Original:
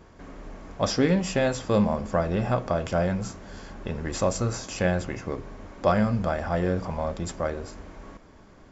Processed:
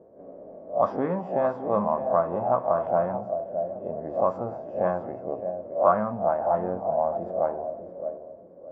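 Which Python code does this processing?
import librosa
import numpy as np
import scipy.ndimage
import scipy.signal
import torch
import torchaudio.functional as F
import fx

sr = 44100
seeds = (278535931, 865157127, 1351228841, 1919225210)

y = fx.spec_swells(x, sr, rise_s=0.31)
y = scipy.signal.sosfilt(scipy.signal.butter(2, 160.0, 'highpass', fs=sr, output='sos'), y)
y = fx.peak_eq(y, sr, hz=660.0, db=7.0, octaves=0.43)
y = fx.echo_feedback(y, sr, ms=617, feedback_pct=31, wet_db=-11.5)
y = fx.envelope_lowpass(y, sr, base_hz=520.0, top_hz=1100.0, q=4.0, full_db=-16.0, direction='up')
y = y * librosa.db_to_amplitude(-7.0)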